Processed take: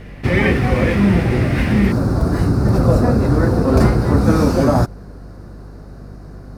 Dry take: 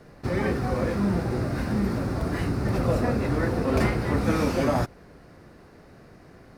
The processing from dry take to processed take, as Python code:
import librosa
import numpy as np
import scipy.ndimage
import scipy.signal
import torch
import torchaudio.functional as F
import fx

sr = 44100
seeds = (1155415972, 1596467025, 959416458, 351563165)

y = fx.low_shelf(x, sr, hz=280.0, db=5.5)
y = fx.add_hum(y, sr, base_hz=50, snr_db=21)
y = fx.band_shelf(y, sr, hz=2500.0, db=fx.steps((0.0, 10.5), (1.91, -8.5)), octaves=1.1)
y = F.gain(torch.from_numpy(y), 7.0).numpy()